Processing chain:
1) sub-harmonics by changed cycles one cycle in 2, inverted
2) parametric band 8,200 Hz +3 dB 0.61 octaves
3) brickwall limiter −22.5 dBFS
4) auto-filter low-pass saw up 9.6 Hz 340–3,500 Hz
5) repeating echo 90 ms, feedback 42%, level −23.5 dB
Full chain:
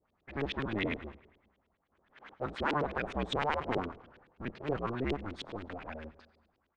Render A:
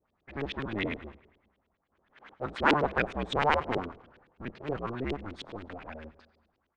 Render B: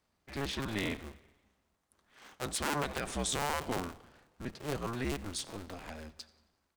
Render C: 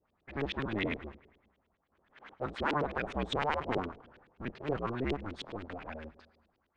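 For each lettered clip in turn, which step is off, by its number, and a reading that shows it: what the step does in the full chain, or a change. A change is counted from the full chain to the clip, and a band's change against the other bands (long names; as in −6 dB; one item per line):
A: 3, change in crest factor +5.5 dB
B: 4, 4 kHz band +4.5 dB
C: 5, echo-to-direct ratio −22.5 dB to none audible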